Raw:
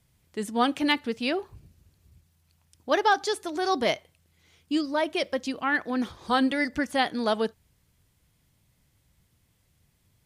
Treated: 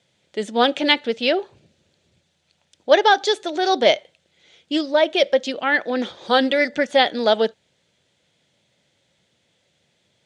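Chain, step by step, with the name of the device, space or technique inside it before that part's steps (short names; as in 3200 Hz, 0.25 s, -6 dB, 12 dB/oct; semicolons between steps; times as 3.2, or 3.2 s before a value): full-range speaker at full volume (Doppler distortion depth 0.11 ms; speaker cabinet 250–7000 Hz, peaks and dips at 280 Hz -4 dB, 560 Hz +7 dB, 1100 Hz -9 dB, 3500 Hz +6 dB, 5200 Hz -4 dB); gain +7.5 dB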